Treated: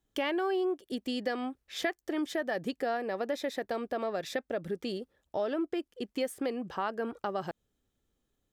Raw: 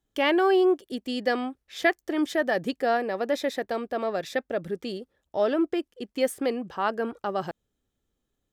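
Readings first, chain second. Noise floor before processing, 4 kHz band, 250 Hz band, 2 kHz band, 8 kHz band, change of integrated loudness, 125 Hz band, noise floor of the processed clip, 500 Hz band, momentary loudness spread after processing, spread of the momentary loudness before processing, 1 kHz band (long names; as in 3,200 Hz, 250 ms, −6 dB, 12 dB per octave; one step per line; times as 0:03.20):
−81 dBFS, −5.5 dB, −6.5 dB, −8.0 dB, −4.5 dB, −7.0 dB, −4.0 dB, −82 dBFS, −7.5 dB, 6 LU, 11 LU, −7.0 dB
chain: downward compressor 3 to 1, threshold −31 dBFS, peak gain reduction 11 dB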